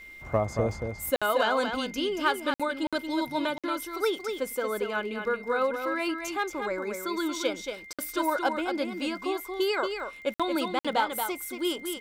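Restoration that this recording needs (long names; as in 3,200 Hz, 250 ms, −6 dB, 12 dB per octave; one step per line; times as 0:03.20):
click removal
notch filter 2,100 Hz, Q 30
repair the gap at 0:01.16/0:02.54/0:02.87/0:03.58/0:07.93/0:10.34/0:10.79, 56 ms
echo removal 229 ms −6.5 dB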